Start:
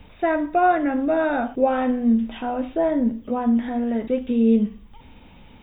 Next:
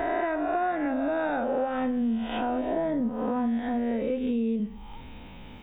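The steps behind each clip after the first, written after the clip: spectral swells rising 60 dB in 1.19 s; compressor, threshold -25 dBFS, peak gain reduction 13 dB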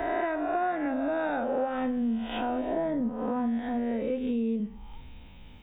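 three-band expander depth 40%; gain -1.5 dB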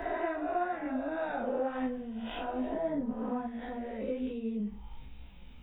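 transient shaper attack -1 dB, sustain +3 dB; chorus voices 6, 1.4 Hz, delay 17 ms, depth 3 ms; gain -2 dB

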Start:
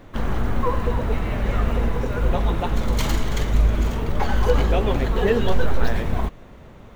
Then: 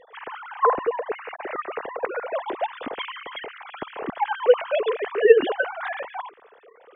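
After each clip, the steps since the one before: sine-wave speech; gain -6.5 dB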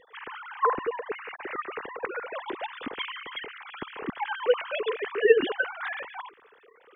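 bell 660 Hz -12.5 dB 0.93 oct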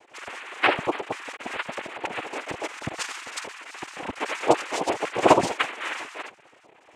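noise vocoder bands 4; gain +2.5 dB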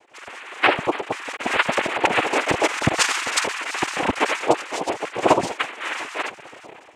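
AGC gain up to 15.5 dB; gain -1 dB

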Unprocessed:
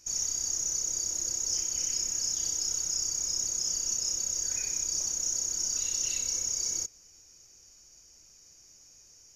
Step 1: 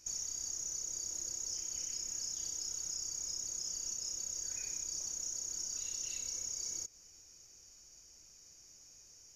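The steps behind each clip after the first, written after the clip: compressor 5:1, threshold -35 dBFS, peak gain reduction 8.5 dB; gain -2.5 dB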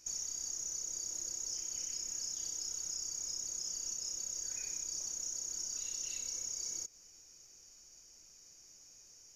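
bell 71 Hz -6 dB 1.5 oct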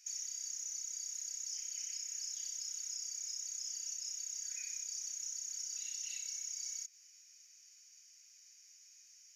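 ladder high-pass 1700 Hz, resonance 40%; gain +5.5 dB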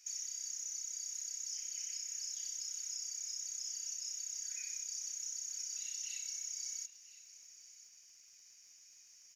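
crackle 150/s -63 dBFS; echo 1.01 s -17 dB

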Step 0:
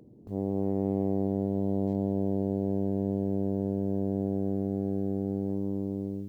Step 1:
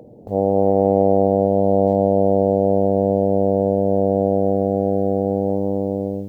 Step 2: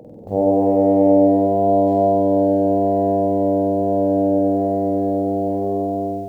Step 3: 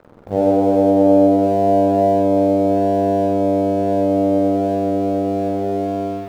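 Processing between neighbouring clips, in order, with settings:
band shelf 640 Hz +13 dB 1.1 oct; gain +8 dB
flutter echo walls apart 8.2 m, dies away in 1.4 s
crossover distortion -39.5 dBFS; gain +1.5 dB

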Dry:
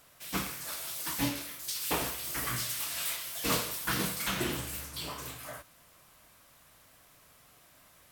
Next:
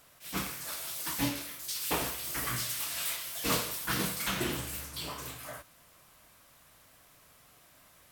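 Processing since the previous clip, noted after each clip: attack slew limiter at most 220 dB/s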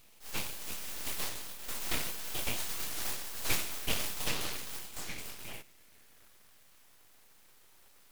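high-pass sweep 1200 Hz -> 180 Hz, 5.36–7.73; full-wave rectifier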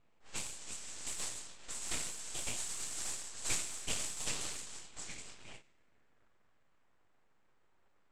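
low-pass opened by the level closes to 1400 Hz, open at -31.5 dBFS; synth low-pass 7800 Hz, resonance Q 5.1; ending taper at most 210 dB/s; gain -7 dB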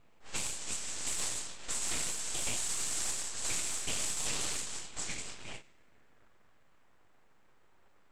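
limiter -30 dBFS, peak gain reduction 10 dB; gain +7.5 dB

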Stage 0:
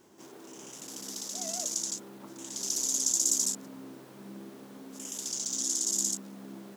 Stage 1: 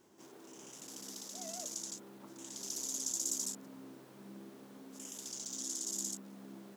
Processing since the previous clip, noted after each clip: dynamic EQ 6400 Hz, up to -4 dB, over -40 dBFS, Q 0.76; gain -6 dB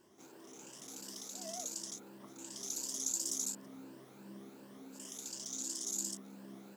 moving spectral ripple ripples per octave 1.3, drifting +2.8 Hz, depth 8 dB; gain -1 dB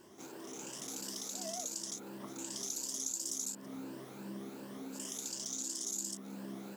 compressor 2.5:1, threshold -47 dBFS, peak gain reduction 11 dB; gain +7.5 dB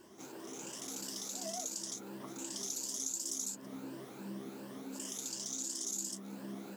flange 1.2 Hz, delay 2.5 ms, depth 7.9 ms, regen -43%; gain +4 dB

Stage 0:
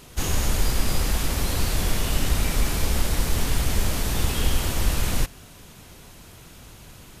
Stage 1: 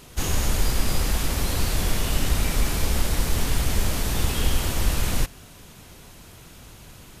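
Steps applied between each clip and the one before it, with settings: nothing audible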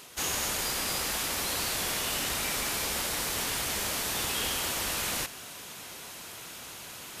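HPF 760 Hz 6 dB/oct; reverse; upward compressor, threshold -35 dBFS; reverse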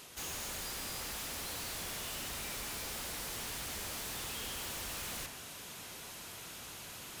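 low shelf 150 Hz +6 dB; de-hum 66.27 Hz, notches 37; soft clip -36 dBFS, distortion -7 dB; gain -3 dB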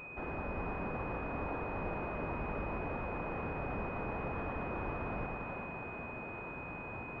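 air absorption 60 m; split-band echo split 520 Hz, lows 94 ms, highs 0.4 s, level -3.5 dB; pulse-width modulation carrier 2500 Hz; gain +6.5 dB

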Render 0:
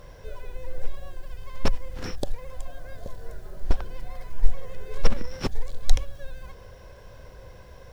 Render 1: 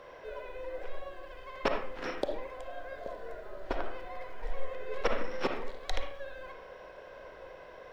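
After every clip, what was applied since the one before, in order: three-band isolator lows -22 dB, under 290 Hz, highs -17 dB, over 3600 Hz; reverb RT60 0.50 s, pre-delay 15 ms, DRR 2.5 dB; gain +1.5 dB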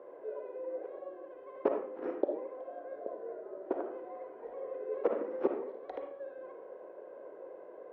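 ladder band-pass 420 Hz, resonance 45%; gain +11.5 dB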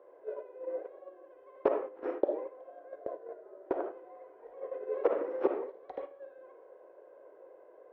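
bell 210 Hz -14.5 dB 0.63 oct; gate -41 dBFS, range -9 dB; gain +3.5 dB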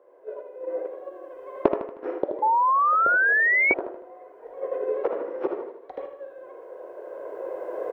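recorder AGC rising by 10 dB/s; feedback echo 78 ms, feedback 46%, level -8 dB; painted sound rise, 2.42–3.74, 850–2300 Hz -20 dBFS

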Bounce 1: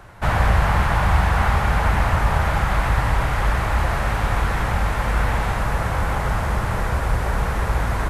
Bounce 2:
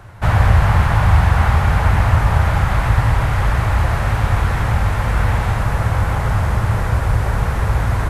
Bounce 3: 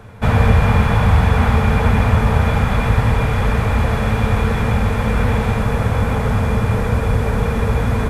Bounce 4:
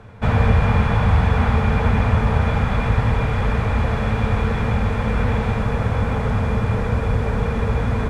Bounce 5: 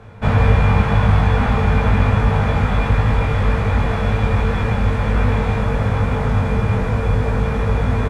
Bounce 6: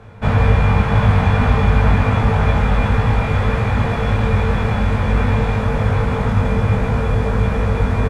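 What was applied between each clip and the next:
bell 100 Hz +10 dB 0.84 oct; gain +1 dB
small resonant body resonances 230/450/2400/3400 Hz, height 15 dB, ringing for 70 ms; gain -1.5 dB
air absorption 61 m; gain -3 dB
doubler 20 ms -2.5 dB
echo 0.711 s -6 dB

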